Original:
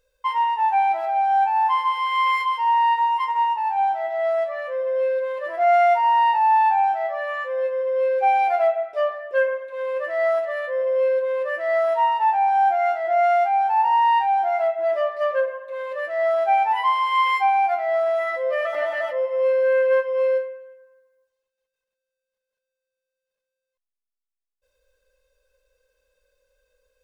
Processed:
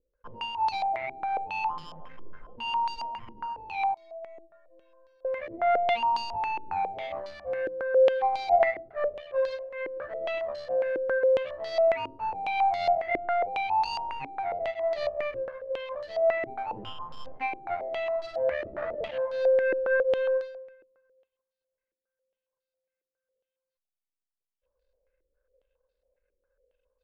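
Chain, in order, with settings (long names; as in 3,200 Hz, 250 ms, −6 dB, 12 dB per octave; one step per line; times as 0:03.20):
running median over 41 samples
0:03.94–0:05.25: stiff-string resonator 330 Hz, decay 0.53 s, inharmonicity 0.008
low-pass on a step sequencer 7.3 Hz 340–4,400 Hz
level −6.5 dB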